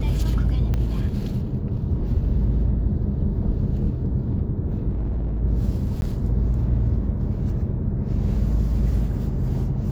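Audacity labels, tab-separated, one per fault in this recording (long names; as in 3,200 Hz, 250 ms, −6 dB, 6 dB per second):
0.740000	0.740000	click −14 dBFS
4.890000	5.430000	clipping −21.5 dBFS
6.010000	6.020000	drop-out 11 ms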